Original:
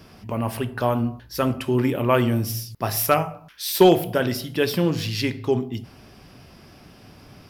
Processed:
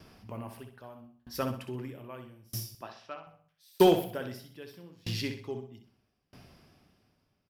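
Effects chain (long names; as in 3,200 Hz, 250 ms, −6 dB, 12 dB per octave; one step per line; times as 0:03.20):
0:02.77–0:03.27: loudspeaker in its box 310–3,900 Hz, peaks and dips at 450 Hz −9 dB, 740 Hz −5 dB, 1,200 Hz −3 dB, 2,100 Hz −8 dB
repeating echo 63 ms, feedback 45%, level −7 dB
tremolo with a ramp in dB decaying 0.79 Hz, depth 30 dB
level −6 dB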